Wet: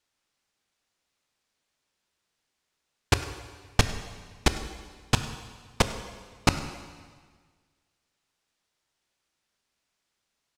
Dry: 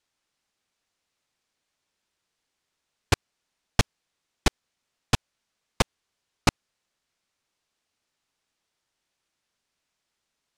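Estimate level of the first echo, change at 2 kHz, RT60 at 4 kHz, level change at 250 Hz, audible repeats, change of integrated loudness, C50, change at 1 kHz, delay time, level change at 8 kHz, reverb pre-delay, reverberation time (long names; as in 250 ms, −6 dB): −19.5 dB, +0.5 dB, 1.5 s, +0.5 dB, 1, −0.5 dB, 10.0 dB, +0.5 dB, 101 ms, +0.5 dB, 7 ms, 1.6 s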